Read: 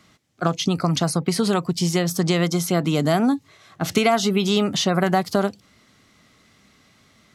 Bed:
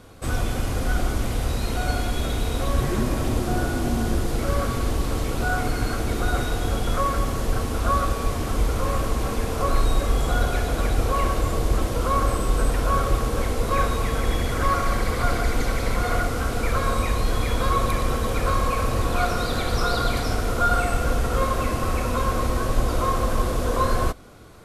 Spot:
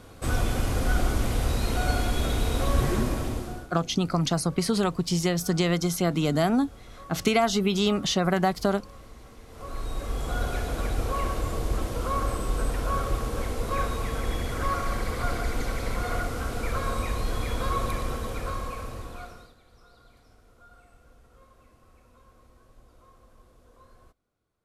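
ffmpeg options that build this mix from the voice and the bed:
-filter_complex "[0:a]adelay=3300,volume=0.631[s0];[1:a]volume=6.68,afade=t=out:st=2.89:d=0.8:silence=0.0749894,afade=t=in:st=9.46:d=1.05:silence=0.133352,afade=t=out:st=17.87:d=1.68:silence=0.0398107[s1];[s0][s1]amix=inputs=2:normalize=0"

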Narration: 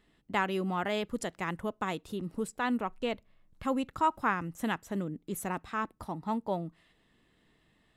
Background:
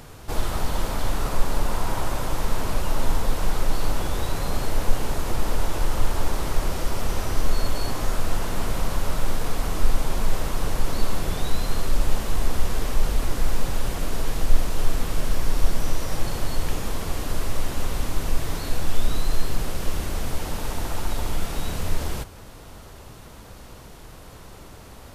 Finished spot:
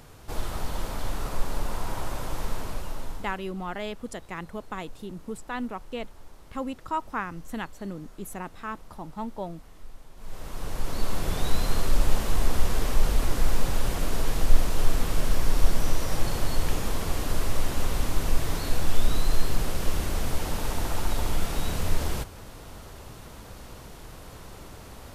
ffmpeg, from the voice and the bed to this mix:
-filter_complex "[0:a]adelay=2900,volume=0.794[s0];[1:a]volume=8.41,afade=t=out:st=2.45:d=0.99:silence=0.112202,afade=t=in:st=10.16:d=1.36:silence=0.0595662[s1];[s0][s1]amix=inputs=2:normalize=0"

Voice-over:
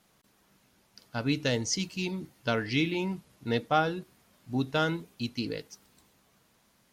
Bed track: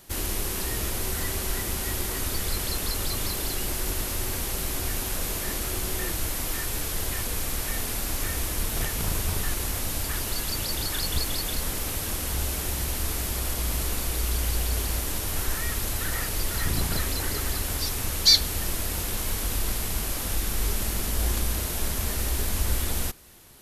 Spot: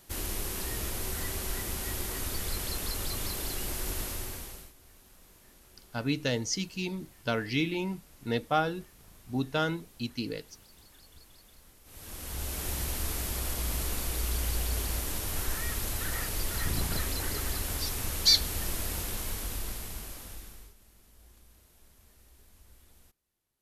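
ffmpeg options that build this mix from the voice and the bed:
-filter_complex "[0:a]adelay=4800,volume=0.841[s0];[1:a]volume=8.41,afade=t=out:st=4.03:d=0.7:silence=0.0707946,afade=t=in:st=11.84:d=0.88:silence=0.0630957,afade=t=out:st=18.89:d=1.85:silence=0.0421697[s1];[s0][s1]amix=inputs=2:normalize=0"

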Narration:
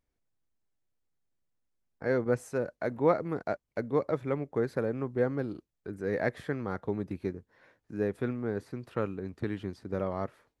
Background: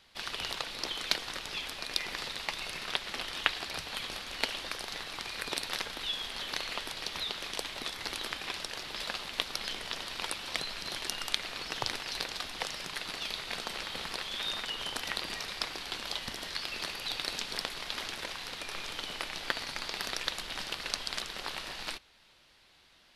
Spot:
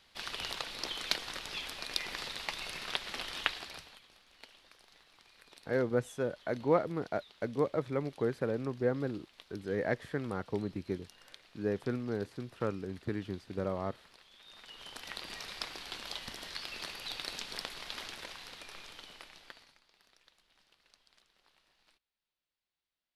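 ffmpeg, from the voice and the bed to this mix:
-filter_complex "[0:a]adelay=3650,volume=0.75[s0];[1:a]volume=5.62,afade=t=out:st=3.39:d=0.61:silence=0.1,afade=t=in:st=14.46:d=1.04:silence=0.133352,afade=t=out:st=17.95:d=1.86:silence=0.0473151[s1];[s0][s1]amix=inputs=2:normalize=0"

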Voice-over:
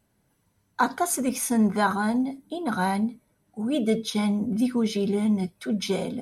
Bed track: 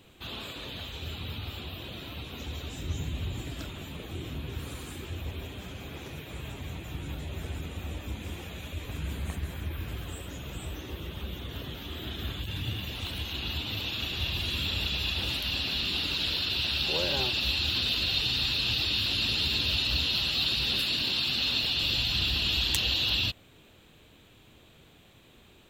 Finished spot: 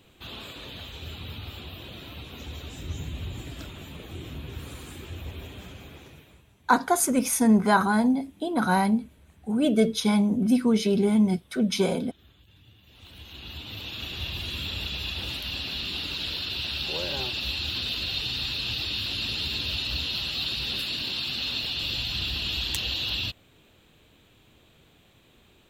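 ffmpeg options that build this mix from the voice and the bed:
-filter_complex "[0:a]adelay=5900,volume=1.33[s0];[1:a]volume=8.91,afade=t=out:st=5.61:d=0.85:silence=0.0891251,afade=t=in:st=12.83:d=1.29:silence=0.1[s1];[s0][s1]amix=inputs=2:normalize=0"

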